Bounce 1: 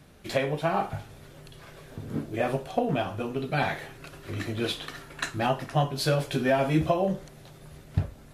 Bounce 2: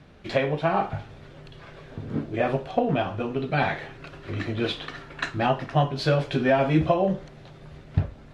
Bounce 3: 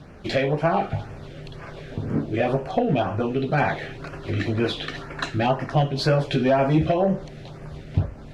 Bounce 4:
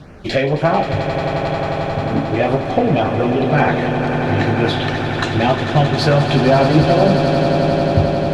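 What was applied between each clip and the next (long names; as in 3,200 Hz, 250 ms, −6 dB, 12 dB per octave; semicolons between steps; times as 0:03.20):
low-pass filter 3,900 Hz 12 dB per octave; level +3 dB
in parallel at −0.5 dB: downward compressor, threshold −30 dBFS, peak gain reduction 14 dB; on the sum: soft clipping −11.5 dBFS, distortion −19 dB; auto-filter notch sine 2 Hz 920–3,800 Hz; level +1.5 dB
echo that builds up and dies away 89 ms, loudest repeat 8, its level −11.5 dB; level +5.5 dB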